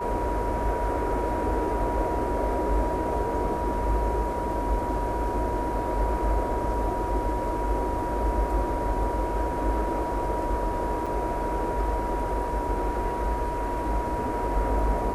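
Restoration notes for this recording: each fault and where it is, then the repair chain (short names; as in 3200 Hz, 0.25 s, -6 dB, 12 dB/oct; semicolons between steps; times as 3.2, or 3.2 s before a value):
tone 960 Hz -30 dBFS
11.06–11.07 gap 5.6 ms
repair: notch 960 Hz, Q 30; interpolate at 11.06, 5.6 ms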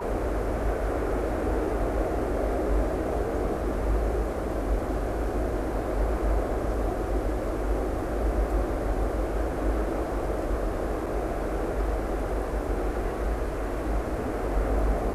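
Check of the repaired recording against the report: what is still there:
none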